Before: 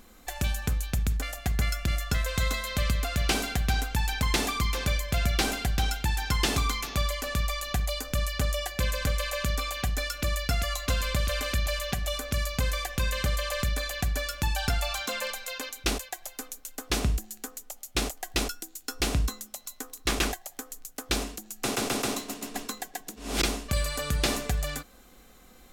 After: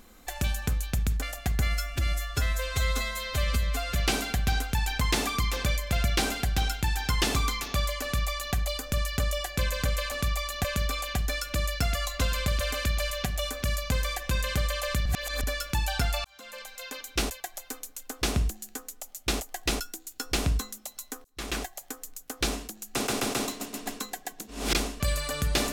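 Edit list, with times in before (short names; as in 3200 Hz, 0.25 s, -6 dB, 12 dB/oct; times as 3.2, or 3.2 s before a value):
1.6–3.17 stretch 1.5×
7.24–7.77 copy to 9.33
13.74–14.12 reverse
14.93–15.89 fade in
19.93–20.45 fade in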